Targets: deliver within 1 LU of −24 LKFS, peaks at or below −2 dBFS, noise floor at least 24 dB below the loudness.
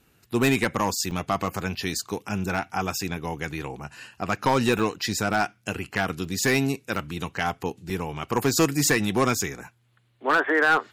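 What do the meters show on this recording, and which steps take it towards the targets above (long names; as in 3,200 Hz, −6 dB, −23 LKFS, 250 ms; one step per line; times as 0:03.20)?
share of clipped samples 0.5%; peaks flattened at −13.5 dBFS; number of dropouts 5; longest dropout 3.4 ms; integrated loudness −25.5 LKFS; sample peak −13.5 dBFS; target loudness −24.0 LKFS
→ clipped peaks rebuilt −13.5 dBFS
repair the gap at 0:01.11/0:04.79/0:06.25/0:06.96/0:07.90, 3.4 ms
level +1.5 dB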